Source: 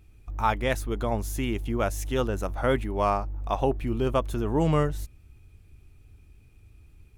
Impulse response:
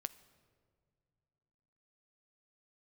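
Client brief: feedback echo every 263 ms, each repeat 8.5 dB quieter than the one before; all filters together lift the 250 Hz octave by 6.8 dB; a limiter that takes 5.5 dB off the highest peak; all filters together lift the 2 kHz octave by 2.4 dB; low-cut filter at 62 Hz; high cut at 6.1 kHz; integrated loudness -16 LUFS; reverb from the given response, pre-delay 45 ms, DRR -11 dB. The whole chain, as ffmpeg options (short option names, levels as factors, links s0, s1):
-filter_complex "[0:a]highpass=62,lowpass=6100,equalizer=f=250:t=o:g=8.5,equalizer=f=2000:t=o:g=3,alimiter=limit=0.2:level=0:latency=1,aecho=1:1:263|526|789|1052:0.376|0.143|0.0543|0.0206,asplit=2[s0][s1];[1:a]atrim=start_sample=2205,adelay=45[s2];[s1][s2]afir=irnorm=-1:irlink=0,volume=4.73[s3];[s0][s3]amix=inputs=2:normalize=0,volume=0.841"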